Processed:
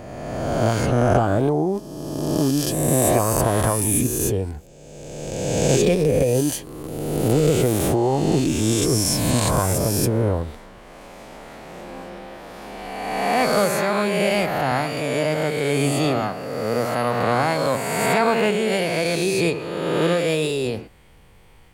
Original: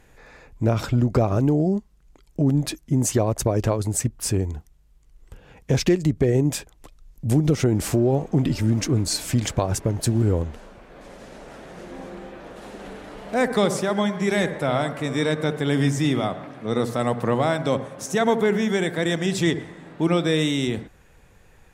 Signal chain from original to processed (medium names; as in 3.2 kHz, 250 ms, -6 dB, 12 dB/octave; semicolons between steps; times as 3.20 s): reverse spectral sustain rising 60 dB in 1.90 s; formant shift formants +4 st; trim -1.5 dB